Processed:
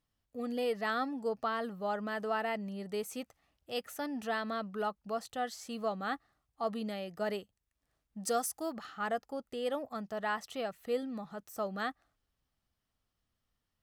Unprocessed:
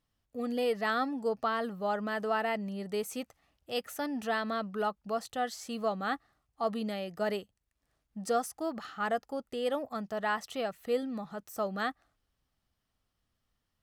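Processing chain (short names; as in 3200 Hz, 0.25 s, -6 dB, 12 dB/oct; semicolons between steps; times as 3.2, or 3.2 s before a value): 8.22–8.72 high shelf 3900 Hz -> 6100 Hz +10.5 dB; gain -3 dB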